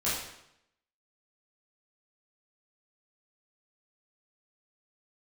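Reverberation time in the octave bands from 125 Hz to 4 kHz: 0.85 s, 0.80 s, 0.80 s, 0.80 s, 0.75 s, 0.70 s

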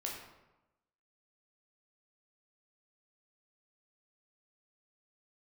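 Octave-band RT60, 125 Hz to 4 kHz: 1.0 s, 1.0 s, 1.0 s, 1.0 s, 0.80 s, 0.65 s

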